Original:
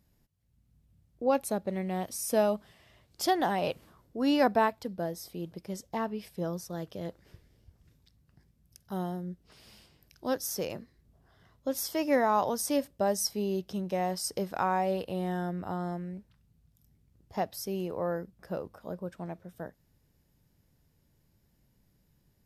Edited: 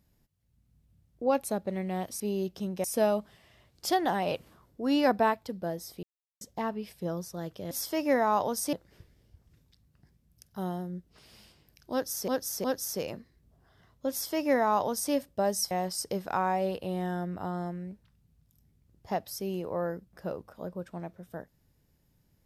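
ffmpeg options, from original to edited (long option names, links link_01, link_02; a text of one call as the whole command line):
ffmpeg -i in.wav -filter_complex "[0:a]asplit=10[link_01][link_02][link_03][link_04][link_05][link_06][link_07][link_08][link_09][link_10];[link_01]atrim=end=2.202[link_11];[link_02]atrim=start=13.328:end=13.972[link_12];[link_03]atrim=start=2.198:end=5.39,asetpts=PTS-STARTPTS,afade=type=out:start_time=3.188:duration=0.004:curve=hsin[link_13];[link_04]atrim=start=5.39:end=5.77,asetpts=PTS-STARTPTS,volume=0[link_14];[link_05]atrim=start=5.77:end=7.072,asetpts=PTS-STARTPTS,afade=type=in:duration=0.004:curve=hsin[link_15];[link_06]atrim=start=11.728:end=12.752[link_16];[link_07]atrim=start=7.068:end=10.622[link_17];[link_08]atrim=start=10.258:end=10.622[link_18];[link_09]atrim=start=10.258:end=13.332[link_19];[link_10]atrim=start=13.968[link_20];[link_11][link_12]acrossfade=duration=0.004:curve1=hsin:curve2=hsin[link_21];[link_13][link_14][link_15]concat=n=3:v=0:a=1[link_22];[link_21][link_22]acrossfade=duration=0.004:curve1=hsin:curve2=hsin[link_23];[link_23][link_16]acrossfade=duration=0.004:curve1=hsin:curve2=hsin[link_24];[link_24][link_17]acrossfade=duration=0.004:curve1=hsin:curve2=hsin[link_25];[link_25][link_18]acrossfade=duration=0.004:curve1=hsin:curve2=hsin[link_26];[link_26][link_19]acrossfade=duration=0.004:curve1=hsin:curve2=hsin[link_27];[link_27][link_20]acrossfade=duration=0.004:curve1=hsin:curve2=hsin" out.wav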